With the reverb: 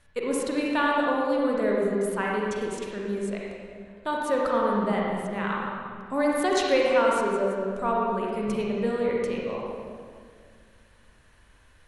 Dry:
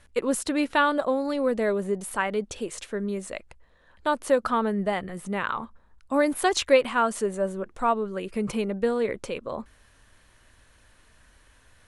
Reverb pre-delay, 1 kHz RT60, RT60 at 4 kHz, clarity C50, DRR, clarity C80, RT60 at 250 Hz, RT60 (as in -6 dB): 38 ms, 1.8 s, 1.6 s, -2.0 dB, -3.5 dB, 0.0 dB, 2.5 s, 2.0 s